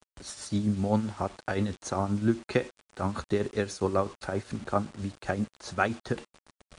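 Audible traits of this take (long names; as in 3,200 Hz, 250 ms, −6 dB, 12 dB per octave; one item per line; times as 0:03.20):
tremolo triangle 7.6 Hz, depth 70%
a quantiser's noise floor 8 bits, dither none
MP3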